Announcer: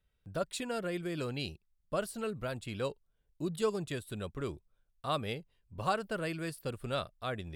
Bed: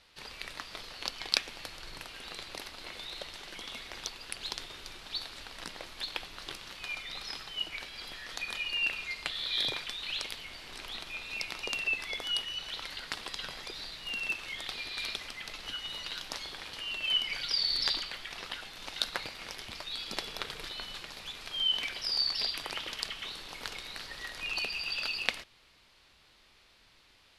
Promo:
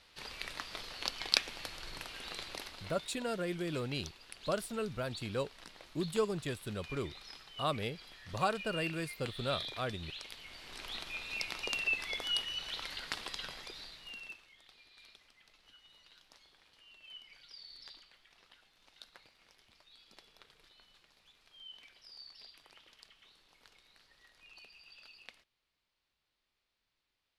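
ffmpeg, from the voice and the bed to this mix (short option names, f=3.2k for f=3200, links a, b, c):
-filter_complex "[0:a]adelay=2550,volume=-0.5dB[a];[1:a]volume=8.5dB,afade=t=out:st=2.44:d=0.71:silence=0.316228,afade=t=in:st=10.21:d=0.72:silence=0.354813,afade=t=out:st=13.17:d=1.32:silence=0.0891251[b];[a][b]amix=inputs=2:normalize=0"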